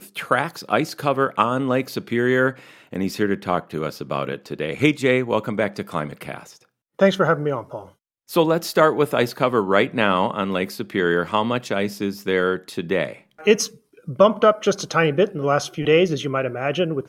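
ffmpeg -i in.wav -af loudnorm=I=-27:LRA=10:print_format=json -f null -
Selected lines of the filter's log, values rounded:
"input_i" : "-20.8",
"input_tp" : "-1.4",
"input_lra" : "3.6",
"input_thresh" : "-31.2",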